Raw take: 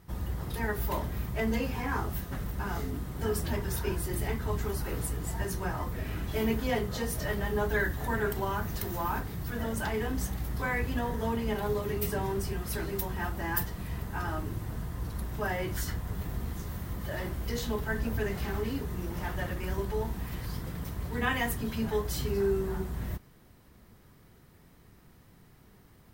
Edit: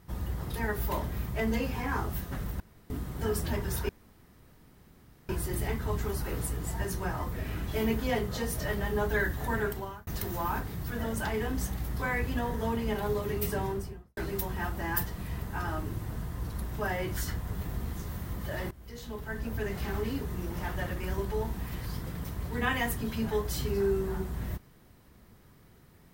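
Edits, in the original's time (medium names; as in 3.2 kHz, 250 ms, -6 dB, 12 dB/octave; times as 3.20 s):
2.60–2.90 s: room tone
3.89 s: insert room tone 1.40 s
8.20–8.67 s: fade out
12.19–12.77 s: studio fade out
17.31–18.53 s: fade in, from -19 dB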